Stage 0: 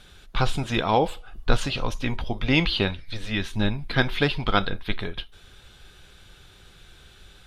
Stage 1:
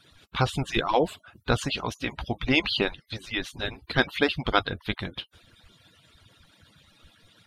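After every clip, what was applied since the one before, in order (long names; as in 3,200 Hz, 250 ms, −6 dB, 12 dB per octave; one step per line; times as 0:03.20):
harmonic-percussive split with one part muted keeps percussive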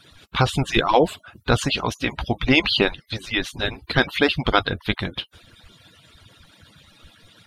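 boost into a limiter +9.5 dB
level −3 dB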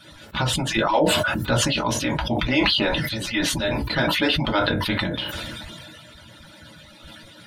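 downward compressor 1.5 to 1, threshold −40 dBFS, peak gain reduction 10.5 dB
convolution reverb RT60 0.15 s, pre-delay 3 ms, DRR −2 dB
level that may fall only so fast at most 22 dB per second
level +1.5 dB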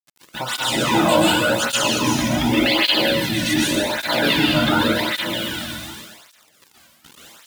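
bit reduction 6 bits
dense smooth reverb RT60 1.2 s, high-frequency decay 0.95×, pre-delay 110 ms, DRR −5.5 dB
through-zero flanger with one copy inverted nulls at 0.87 Hz, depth 2.5 ms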